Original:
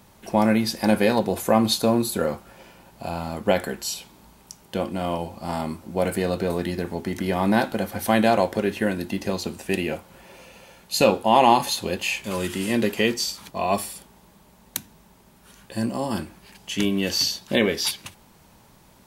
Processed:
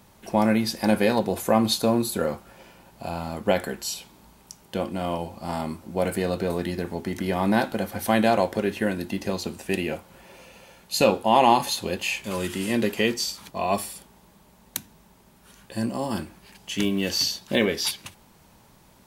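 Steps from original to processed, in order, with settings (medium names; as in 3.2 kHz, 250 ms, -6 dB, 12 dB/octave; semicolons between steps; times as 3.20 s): 16.00–17.65 s: block-companded coder 7-bit; trim -1.5 dB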